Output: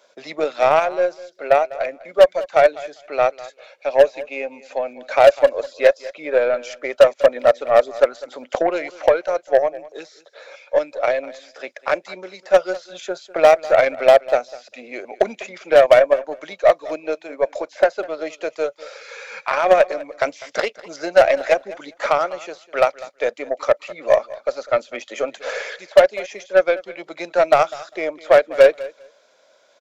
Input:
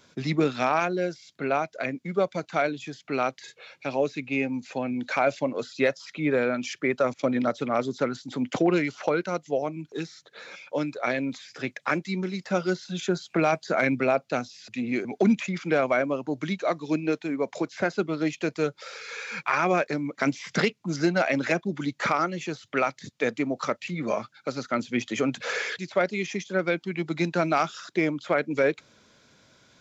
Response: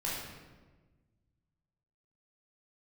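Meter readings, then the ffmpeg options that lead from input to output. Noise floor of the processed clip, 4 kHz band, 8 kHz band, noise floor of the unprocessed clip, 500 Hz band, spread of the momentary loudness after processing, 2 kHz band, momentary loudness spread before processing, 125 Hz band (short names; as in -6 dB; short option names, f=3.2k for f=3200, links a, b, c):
-57 dBFS, +5.0 dB, n/a, -64 dBFS, +11.5 dB, 18 LU, +4.0 dB, 8 LU, under -10 dB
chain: -af "highpass=f=580:t=q:w=4.7,aeval=exprs='0.447*(cos(1*acos(clip(val(0)/0.447,-1,1)))-cos(1*PI/2))+0.0631*(cos(3*acos(clip(val(0)/0.447,-1,1)))-cos(3*PI/2))+0.00562*(cos(4*acos(clip(val(0)/0.447,-1,1)))-cos(4*PI/2))':c=same,aecho=1:1:200|400:0.112|0.0168,volume=3.5dB"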